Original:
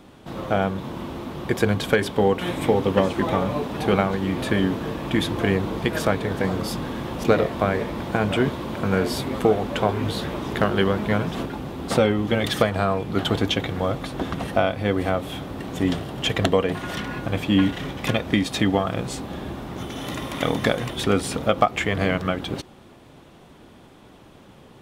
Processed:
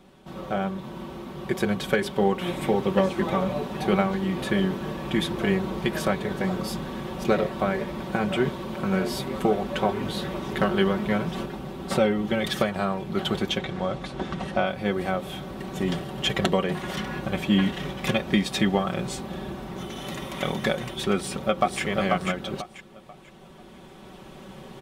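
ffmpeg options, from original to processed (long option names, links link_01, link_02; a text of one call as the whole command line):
ffmpeg -i in.wav -filter_complex "[0:a]asettb=1/sr,asplit=3[link_01][link_02][link_03];[link_01]atrim=end=13.584[link_04];[link_02]atrim=start=13.58:end=14.66,asetpts=PTS-STARTPTS,afade=type=in:duration=0.004:curve=qsin,afade=type=out:start_time=1.076:duration=0.004:curve=qsin,lowpass=8000[link_05];[link_03]atrim=start=14.656[link_06];[link_04][link_05]acrossfade=duration=0.004:curve1=hsin:curve2=qsin[link_07];[link_07][link_06]acrossfade=duration=0.004:curve1=qsin:curve2=hsin,asplit=2[link_08][link_09];[link_09]afade=type=in:start_time=21.15:duration=0.01,afade=type=out:start_time=21.82:duration=0.01,aecho=0:1:490|980|1470|1960:0.707946|0.176986|0.0442466|0.0110617[link_10];[link_08][link_10]amix=inputs=2:normalize=0,aecho=1:1:5.3:0.65,dynaudnorm=framelen=430:gausssize=7:maxgain=11.5dB,volume=-7dB" out.wav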